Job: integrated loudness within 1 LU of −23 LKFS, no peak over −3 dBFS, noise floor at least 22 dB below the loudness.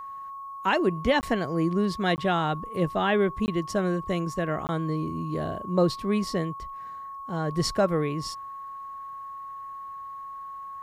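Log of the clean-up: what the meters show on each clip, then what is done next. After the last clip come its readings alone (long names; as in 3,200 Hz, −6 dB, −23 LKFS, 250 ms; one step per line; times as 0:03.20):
number of dropouts 4; longest dropout 19 ms; interfering tone 1,100 Hz; level of the tone −36 dBFS; integrated loudness −27.0 LKFS; sample peak −11.5 dBFS; target loudness −23.0 LKFS
→ repair the gap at 0:01.21/0:02.16/0:03.46/0:04.67, 19 ms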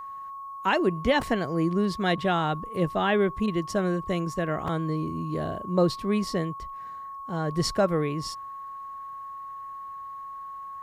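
number of dropouts 0; interfering tone 1,100 Hz; level of the tone −36 dBFS
→ notch filter 1,100 Hz, Q 30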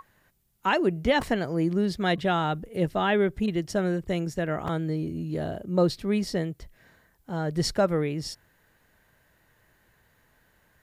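interfering tone none found; integrated loudness −27.0 LKFS; sample peak −12.0 dBFS; target loudness −23.0 LKFS
→ level +4 dB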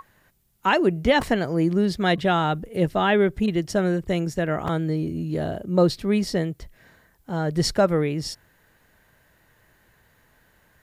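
integrated loudness −23.0 LKFS; sample peak −8.0 dBFS; background noise floor −62 dBFS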